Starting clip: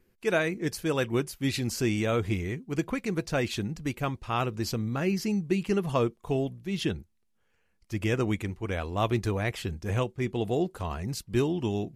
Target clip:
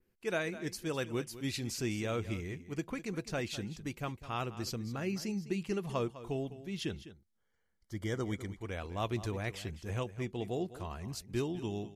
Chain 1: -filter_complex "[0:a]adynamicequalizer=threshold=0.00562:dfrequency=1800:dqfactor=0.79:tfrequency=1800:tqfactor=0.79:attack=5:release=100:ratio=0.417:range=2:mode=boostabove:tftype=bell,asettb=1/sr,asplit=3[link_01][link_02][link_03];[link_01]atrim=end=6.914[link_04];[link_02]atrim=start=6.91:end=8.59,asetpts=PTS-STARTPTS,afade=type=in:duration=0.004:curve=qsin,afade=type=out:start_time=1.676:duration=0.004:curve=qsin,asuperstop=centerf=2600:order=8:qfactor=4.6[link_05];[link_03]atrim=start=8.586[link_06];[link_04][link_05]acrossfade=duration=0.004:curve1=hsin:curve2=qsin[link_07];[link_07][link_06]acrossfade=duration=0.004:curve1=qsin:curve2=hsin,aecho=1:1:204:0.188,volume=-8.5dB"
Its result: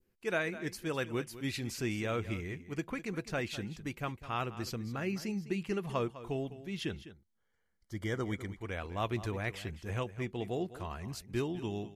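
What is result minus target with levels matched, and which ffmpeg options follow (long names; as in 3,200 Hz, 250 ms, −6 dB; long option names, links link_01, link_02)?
8,000 Hz band −3.5 dB
-filter_complex "[0:a]adynamicequalizer=threshold=0.00562:dfrequency=5900:dqfactor=0.79:tfrequency=5900:tqfactor=0.79:attack=5:release=100:ratio=0.417:range=2:mode=boostabove:tftype=bell,asettb=1/sr,asplit=3[link_01][link_02][link_03];[link_01]atrim=end=6.914[link_04];[link_02]atrim=start=6.91:end=8.59,asetpts=PTS-STARTPTS,afade=type=in:duration=0.004:curve=qsin,afade=type=out:start_time=1.676:duration=0.004:curve=qsin,asuperstop=centerf=2600:order=8:qfactor=4.6[link_05];[link_03]atrim=start=8.586[link_06];[link_04][link_05]acrossfade=duration=0.004:curve1=hsin:curve2=qsin[link_07];[link_07][link_06]acrossfade=duration=0.004:curve1=qsin:curve2=hsin,aecho=1:1:204:0.188,volume=-8.5dB"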